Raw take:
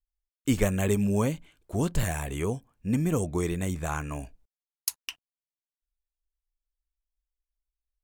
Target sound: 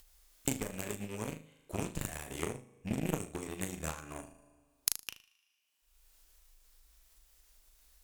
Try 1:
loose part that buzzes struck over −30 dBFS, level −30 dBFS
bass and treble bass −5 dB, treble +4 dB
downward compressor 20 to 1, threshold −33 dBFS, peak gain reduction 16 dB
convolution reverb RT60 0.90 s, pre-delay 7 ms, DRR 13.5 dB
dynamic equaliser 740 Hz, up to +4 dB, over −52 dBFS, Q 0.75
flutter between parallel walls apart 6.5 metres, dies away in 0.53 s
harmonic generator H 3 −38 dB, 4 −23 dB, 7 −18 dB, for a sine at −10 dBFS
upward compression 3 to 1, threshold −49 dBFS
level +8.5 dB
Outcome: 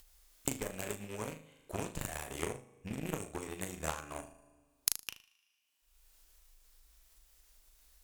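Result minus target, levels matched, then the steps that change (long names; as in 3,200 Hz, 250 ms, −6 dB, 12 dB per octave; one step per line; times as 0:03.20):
250 Hz band −3.0 dB
change: dynamic equaliser 210 Hz, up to +4 dB, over −52 dBFS, Q 0.75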